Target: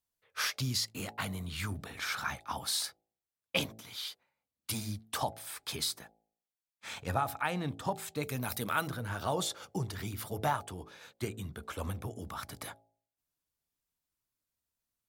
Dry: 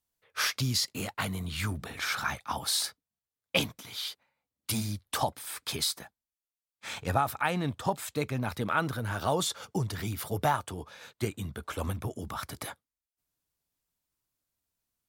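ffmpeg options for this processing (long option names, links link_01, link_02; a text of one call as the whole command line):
ffmpeg -i in.wav -filter_complex "[0:a]asettb=1/sr,asplit=3[link_01][link_02][link_03];[link_01]atrim=end=8.234[link_04];[link_02]atrim=start=8.23:end=8.88,asetpts=PTS-STARTPTS,afade=type=in:duration=0.004:curve=qsin,afade=type=out:start_time=0.646:duration=0.004:curve=qsin,aemphasis=mode=production:type=75fm[link_05];[link_03]atrim=start=8.876[link_06];[link_04][link_05]acrossfade=duration=0.004:curve1=hsin:curve2=qsin[link_07];[link_07][link_06]acrossfade=duration=0.004:curve1=qsin:curve2=hsin,bandreject=frequency=55.06:width_type=h:width=4,bandreject=frequency=110.12:width_type=h:width=4,bandreject=frequency=165.18:width_type=h:width=4,bandreject=frequency=220.24:width_type=h:width=4,bandreject=frequency=275.3:width_type=h:width=4,bandreject=frequency=330.36:width_type=h:width=4,bandreject=frequency=385.42:width_type=h:width=4,bandreject=frequency=440.48:width_type=h:width=4,bandreject=frequency=495.54:width_type=h:width=4,bandreject=frequency=550.6:width_type=h:width=4,bandreject=frequency=605.66:width_type=h:width=4,bandreject=frequency=660.72:width_type=h:width=4,bandreject=frequency=715.78:width_type=h:width=4,bandreject=frequency=770.84:width_type=h:width=4,bandreject=frequency=825.9:width_type=h:width=4,volume=-4dB" out.wav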